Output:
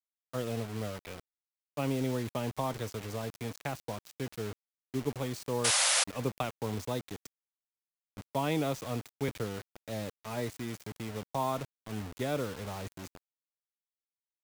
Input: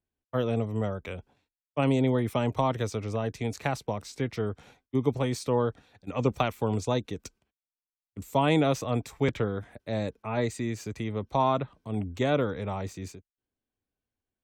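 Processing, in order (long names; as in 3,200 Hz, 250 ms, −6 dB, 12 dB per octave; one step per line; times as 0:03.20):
bit reduction 6 bits
sound drawn into the spectrogram noise, 0:05.64–0:06.04, 500–11,000 Hz −19 dBFS
level −7.5 dB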